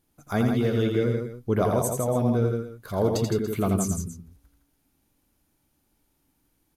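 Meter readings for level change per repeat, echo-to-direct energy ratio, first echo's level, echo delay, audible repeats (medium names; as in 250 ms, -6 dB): no regular repeats, -2.0 dB, -5.0 dB, 84 ms, 3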